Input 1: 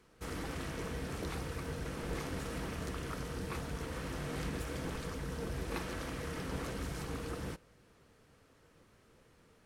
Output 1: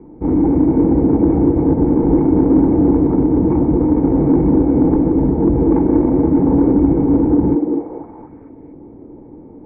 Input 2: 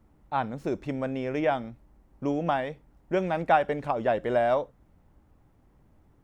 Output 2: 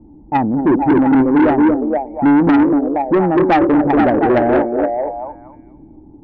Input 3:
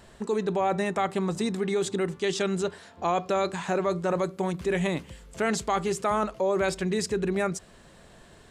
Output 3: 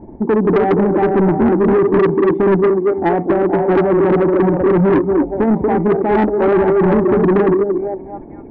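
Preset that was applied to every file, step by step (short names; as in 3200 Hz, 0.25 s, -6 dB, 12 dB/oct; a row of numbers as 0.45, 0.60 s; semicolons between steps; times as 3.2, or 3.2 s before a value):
vocal tract filter u; air absorption 260 m; in parallel at -0.5 dB: level quantiser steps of 13 dB; on the sum: delay with a stepping band-pass 0.235 s, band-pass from 370 Hz, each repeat 0.7 oct, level -0.5 dB; soft clip -33.5 dBFS; bell 1800 Hz +4.5 dB 0.73 oct; match loudness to -14 LUFS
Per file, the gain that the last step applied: +31.5, +25.0, +24.5 dB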